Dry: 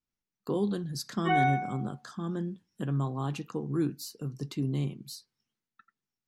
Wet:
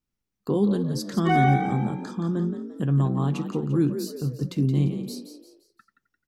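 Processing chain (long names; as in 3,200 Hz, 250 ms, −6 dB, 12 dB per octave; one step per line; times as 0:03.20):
low-shelf EQ 390 Hz +7.5 dB
on a send: echo with shifted repeats 173 ms, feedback 40%, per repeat +51 Hz, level −9.5 dB
on the sum: level +2 dB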